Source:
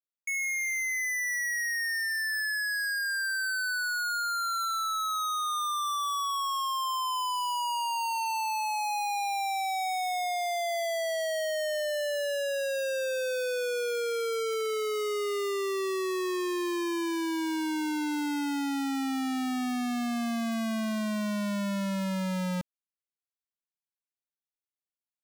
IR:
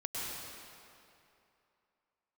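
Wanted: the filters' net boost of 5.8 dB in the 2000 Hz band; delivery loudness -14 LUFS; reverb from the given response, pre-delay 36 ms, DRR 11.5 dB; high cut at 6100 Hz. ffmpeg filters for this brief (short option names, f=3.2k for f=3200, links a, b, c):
-filter_complex "[0:a]lowpass=6.1k,equalizer=f=2k:t=o:g=7,asplit=2[a][b];[1:a]atrim=start_sample=2205,adelay=36[c];[b][c]afir=irnorm=-1:irlink=0,volume=-15dB[d];[a][d]amix=inputs=2:normalize=0,volume=13dB"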